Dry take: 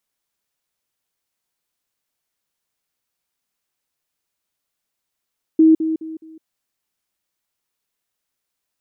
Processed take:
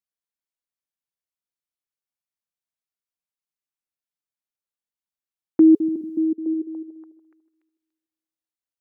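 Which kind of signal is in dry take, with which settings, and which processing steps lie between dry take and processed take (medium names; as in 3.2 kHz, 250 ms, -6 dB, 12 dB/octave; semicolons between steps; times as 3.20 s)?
level ladder 319 Hz -7.5 dBFS, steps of -10 dB, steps 4, 0.16 s 0.05 s
gate -33 dBFS, range -17 dB; band-stop 420 Hz, Q 12; repeats whose band climbs or falls 289 ms, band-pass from 160 Hz, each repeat 0.7 oct, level -6 dB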